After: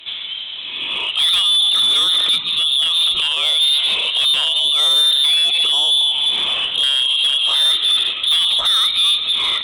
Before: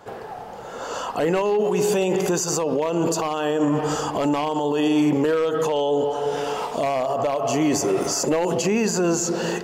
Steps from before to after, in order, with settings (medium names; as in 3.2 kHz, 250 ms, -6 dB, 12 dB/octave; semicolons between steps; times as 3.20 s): frequency inversion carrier 3.9 kHz; Chebyshev shaper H 3 -20 dB, 5 -17 dB, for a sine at -10 dBFS; trim +5 dB